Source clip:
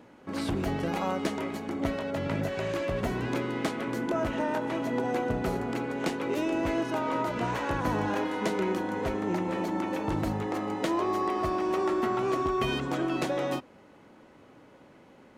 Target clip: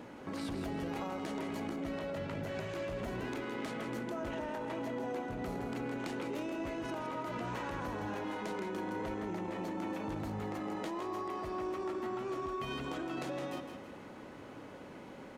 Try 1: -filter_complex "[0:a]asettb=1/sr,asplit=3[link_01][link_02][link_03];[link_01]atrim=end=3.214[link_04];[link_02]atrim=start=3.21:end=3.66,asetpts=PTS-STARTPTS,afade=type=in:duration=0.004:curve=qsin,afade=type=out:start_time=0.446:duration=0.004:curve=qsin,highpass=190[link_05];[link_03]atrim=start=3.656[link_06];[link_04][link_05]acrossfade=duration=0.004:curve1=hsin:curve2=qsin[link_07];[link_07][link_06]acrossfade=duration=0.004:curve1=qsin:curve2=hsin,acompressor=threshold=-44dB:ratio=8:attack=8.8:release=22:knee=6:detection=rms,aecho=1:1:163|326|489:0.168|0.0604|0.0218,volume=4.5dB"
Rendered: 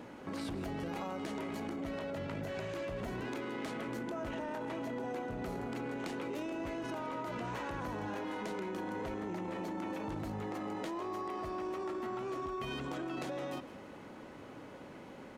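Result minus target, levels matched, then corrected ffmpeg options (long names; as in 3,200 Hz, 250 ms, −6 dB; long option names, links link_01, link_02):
echo-to-direct −8 dB
-filter_complex "[0:a]asettb=1/sr,asplit=3[link_01][link_02][link_03];[link_01]atrim=end=3.214[link_04];[link_02]atrim=start=3.21:end=3.66,asetpts=PTS-STARTPTS,afade=type=in:duration=0.004:curve=qsin,afade=type=out:start_time=0.446:duration=0.004:curve=qsin,highpass=190[link_05];[link_03]atrim=start=3.656[link_06];[link_04][link_05]acrossfade=duration=0.004:curve1=hsin:curve2=qsin[link_07];[link_07][link_06]acrossfade=duration=0.004:curve1=qsin:curve2=hsin,acompressor=threshold=-44dB:ratio=8:attack=8.8:release=22:knee=6:detection=rms,aecho=1:1:163|326|489|652:0.422|0.152|0.0547|0.0197,volume=4.5dB"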